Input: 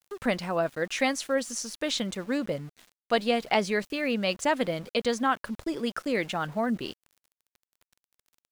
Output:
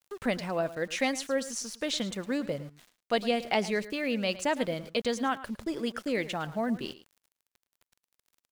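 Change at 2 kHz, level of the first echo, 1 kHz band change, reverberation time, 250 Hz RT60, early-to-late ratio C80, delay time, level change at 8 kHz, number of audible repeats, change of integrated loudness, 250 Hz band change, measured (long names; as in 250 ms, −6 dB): −3.0 dB, −16.0 dB, −4.0 dB, no reverb audible, no reverb audible, no reverb audible, 109 ms, −2.0 dB, 1, −2.5 dB, −2.0 dB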